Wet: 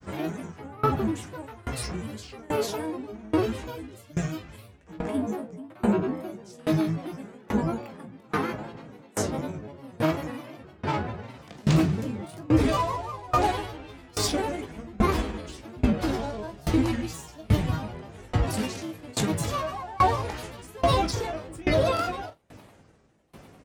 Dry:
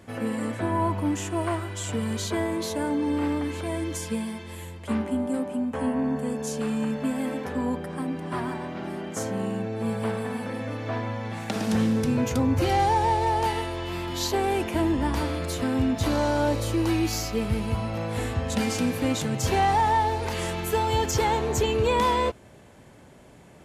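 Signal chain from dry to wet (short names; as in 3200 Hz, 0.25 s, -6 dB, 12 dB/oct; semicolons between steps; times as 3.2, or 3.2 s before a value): grains, spray 34 ms, pitch spread up and down by 7 st; early reflections 19 ms -9 dB, 44 ms -15 dB; dB-ramp tremolo decaying 1.2 Hz, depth 25 dB; gain +5.5 dB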